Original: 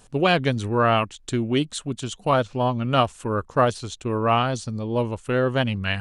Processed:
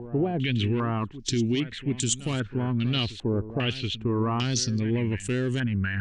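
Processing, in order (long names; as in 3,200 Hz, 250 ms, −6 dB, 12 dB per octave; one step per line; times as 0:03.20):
in parallel at −6 dB: soft clipping −23 dBFS, distortion −7 dB
on the sum: flat-topped bell 840 Hz −16 dB
brickwall limiter −18.5 dBFS, peak gain reduction 11.5 dB
backwards echo 726 ms −14.5 dB
low-pass on a step sequencer 2.5 Hz 750–7,700 Hz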